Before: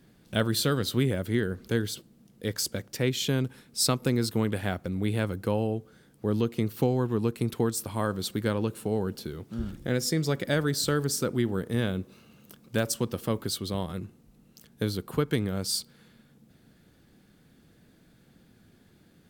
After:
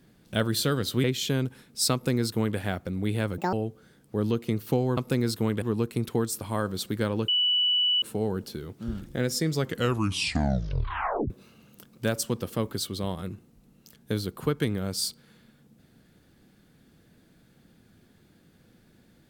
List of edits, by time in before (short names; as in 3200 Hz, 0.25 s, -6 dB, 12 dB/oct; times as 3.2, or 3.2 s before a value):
1.04–3.03 cut
3.92–4.57 copy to 7.07
5.37–5.63 speed 172%
8.73 add tone 2960 Hz -20.5 dBFS 0.74 s
10.27 tape stop 1.74 s